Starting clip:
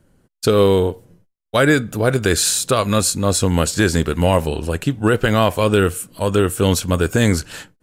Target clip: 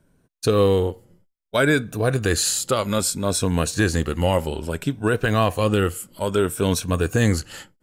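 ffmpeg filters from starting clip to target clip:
ffmpeg -i in.wav -af "afftfilt=real='re*pow(10,7/40*sin(2*PI*(1.6*log(max(b,1)*sr/1024/100)/log(2)-(0.61)*(pts-256)/sr)))':imag='im*pow(10,7/40*sin(2*PI*(1.6*log(max(b,1)*sr/1024/100)/log(2)-(0.61)*(pts-256)/sr)))':win_size=1024:overlap=0.75,volume=-5dB" out.wav

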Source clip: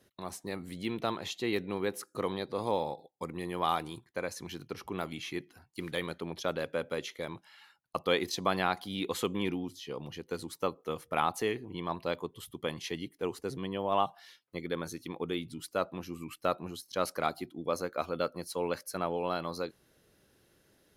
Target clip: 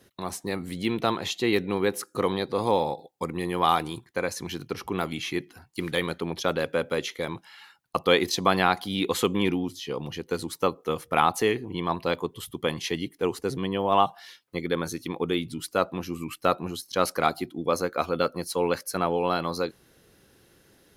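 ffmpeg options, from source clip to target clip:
ffmpeg -i in.wav -af "bandreject=frequency=610:width=12,volume=8dB" out.wav

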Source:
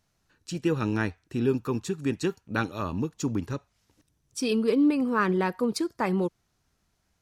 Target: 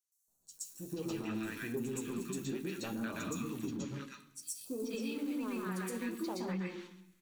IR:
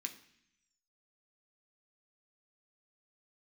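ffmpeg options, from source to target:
-filter_complex "[0:a]bandreject=frequency=50:width_type=h:width=6,bandreject=frequency=100:width_type=h:width=6,bandreject=frequency=150:width_type=h:width=6,bandreject=frequency=200:width_type=h:width=6,bandreject=frequency=250:width_type=h:width=6,bandreject=frequency=300:width_type=h:width=6,bandreject=frequency=350:width_type=h:width=6,asoftclip=type=tanh:threshold=-16.5dB,asplit=2[link_01][link_02];[link_02]aemphasis=mode=production:type=50fm[link_03];[1:a]atrim=start_sample=2205,lowshelf=frequency=290:gain=8.5,adelay=121[link_04];[link_03][link_04]afir=irnorm=-1:irlink=0,volume=3dB[link_05];[link_01][link_05]amix=inputs=2:normalize=0,acrusher=bits=5:mode=log:mix=0:aa=0.000001,alimiter=limit=-15.5dB:level=0:latency=1:release=39,equalizer=frequency=85:width_type=o:width=1.6:gain=-12,bandreject=frequency=5100:width=8.3,acrossover=split=1100|5700[link_06][link_07][link_08];[link_06]adelay=280[link_09];[link_07]adelay=480[link_10];[link_09][link_10][link_08]amix=inputs=3:normalize=0,acompressor=threshold=-27dB:ratio=6,flanger=delay=6.2:depth=8.9:regen=-53:speed=0.61:shape=triangular,volume=-3.5dB"

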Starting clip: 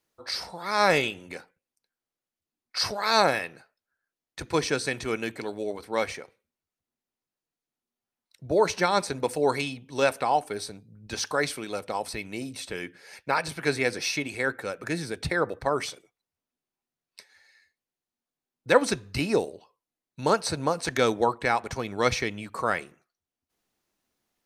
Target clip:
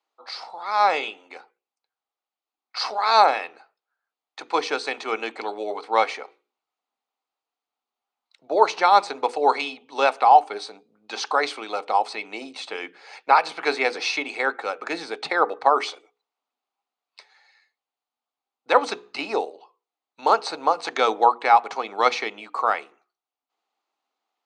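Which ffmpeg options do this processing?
ffmpeg -i in.wav -af "highpass=frequency=330:width=0.5412,highpass=frequency=330:width=1.3066,equalizer=frequency=360:width_type=q:width=4:gain=-5,equalizer=frequency=550:width_type=q:width=4:gain=-4,equalizer=frequency=800:width_type=q:width=4:gain=9,equalizer=frequency=1200:width_type=q:width=4:gain=6,equalizer=frequency=1700:width_type=q:width=4:gain=-6,equalizer=frequency=5600:width_type=q:width=4:gain=-8,lowpass=frequency=6100:width=0.5412,lowpass=frequency=6100:width=1.3066,bandreject=frequency=60:width_type=h:width=6,bandreject=frequency=120:width_type=h:width=6,bandreject=frequency=180:width_type=h:width=6,bandreject=frequency=240:width_type=h:width=6,bandreject=frequency=300:width_type=h:width=6,bandreject=frequency=360:width_type=h:width=6,bandreject=frequency=420:width_type=h:width=6,bandreject=frequency=480:width_type=h:width=6,dynaudnorm=framelen=310:gausssize=13:maxgain=11.5dB,volume=-1dB" out.wav

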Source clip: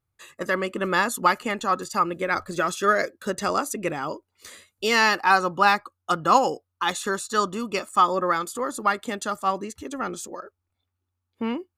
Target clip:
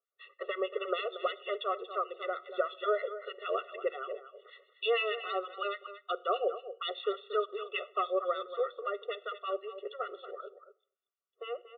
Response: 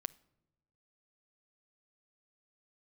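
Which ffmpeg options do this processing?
-filter_complex "[0:a]asuperstop=centerf=2200:order=4:qfactor=7.1,acrossover=split=650|2300[link_01][link_02][link_03];[link_02]acompressor=threshold=-31dB:ratio=6[link_04];[link_01][link_04][link_03]amix=inputs=3:normalize=0,acrossover=split=1400[link_05][link_06];[link_05]aeval=exprs='val(0)*(1-1/2+1/2*cos(2*PI*6.5*n/s))':channel_layout=same[link_07];[link_06]aeval=exprs='val(0)*(1-1/2-1/2*cos(2*PI*6.5*n/s))':channel_layout=same[link_08];[link_07][link_08]amix=inputs=2:normalize=0,aecho=1:1:233:0.237[link_09];[1:a]atrim=start_sample=2205,afade=type=out:start_time=0.32:duration=0.01,atrim=end_sample=14553[link_10];[link_09][link_10]afir=irnorm=-1:irlink=0,aresample=8000,aresample=44100,highpass=frequency=320:width=0.5412,highpass=frequency=320:width=1.3066,afftfilt=real='re*eq(mod(floor(b*sr/1024/370),2),1)':imag='im*eq(mod(floor(b*sr/1024/370),2),1)':win_size=1024:overlap=0.75,volume=3dB"

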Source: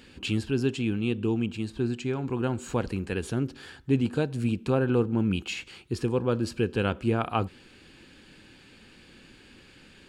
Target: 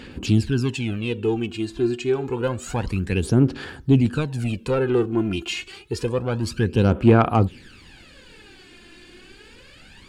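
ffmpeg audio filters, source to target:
ffmpeg -i in.wav -af "asoftclip=type=tanh:threshold=-17dB,aphaser=in_gain=1:out_gain=1:delay=2.9:decay=0.65:speed=0.28:type=sinusoidal,volume=4dB" out.wav

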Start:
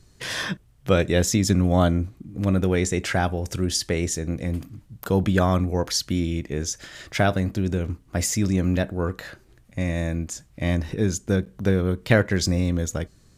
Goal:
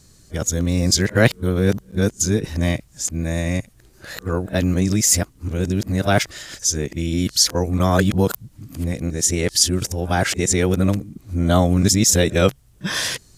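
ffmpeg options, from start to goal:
ffmpeg -i in.wav -af "areverse,bass=frequency=250:gain=0,treble=frequency=4000:gain=8,volume=3dB" out.wav

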